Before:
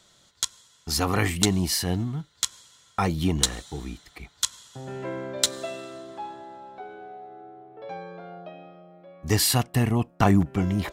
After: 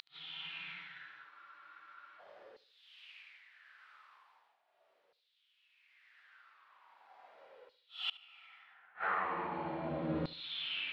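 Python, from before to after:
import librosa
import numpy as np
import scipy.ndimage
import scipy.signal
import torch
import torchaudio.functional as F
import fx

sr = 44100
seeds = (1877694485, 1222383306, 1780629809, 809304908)

p1 = fx.dead_time(x, sr, dead_ms=0.22)
p2 = fx.env_lowpass_down(p1, sr, base_hz=2000.0, full_db=-22.0)
p3 = fx.low_shelf(p2, sr, hz=180.0, db=8.0)
p4 = fx.over_compress(p3, sr, threshold_db=-27.0, ratio=-1.0)
p5 = fx.paulstretch(p4, sr, seeds[0], factor=10.0, window_s=0.1, from_s=2.15)
p6 = fx.filter_lfo_highpass(p5, sr, shape='saw_down', hz=0.39, low_hz=480.0, high_hz=4300.0, q=5.2)
p7 = fx.gate_flip(p6, sr, shuts_db=-24.0, range_db=-34)
p8 = fx.air_absorb(p7, sr, metres=410.0)
p9 = p8 + fx.echo_feedback(p8, sr, ms=73, feedback_pct=34, wet_db=-19.0, dry=0)
p10 = fx.spec_freeze(p9, sr, seeds[1], at_s=1.32, hold_s=0.88)
y = F.gain(torch.from_numpy(p10), 6.5).numpy()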